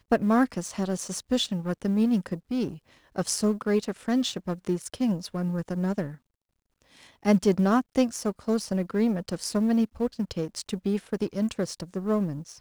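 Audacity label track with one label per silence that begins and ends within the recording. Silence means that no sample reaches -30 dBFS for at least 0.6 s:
6.090000	7.250000	silence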